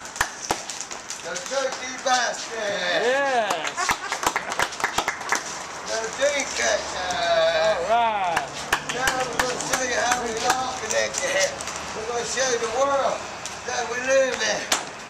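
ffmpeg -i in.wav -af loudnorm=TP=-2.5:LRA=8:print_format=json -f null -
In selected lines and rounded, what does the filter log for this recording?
"input_i" : "-23.7",
"input_tp" : "-8.6",
"input_lra" : "2.1",
"input_thresh" : "-33.7",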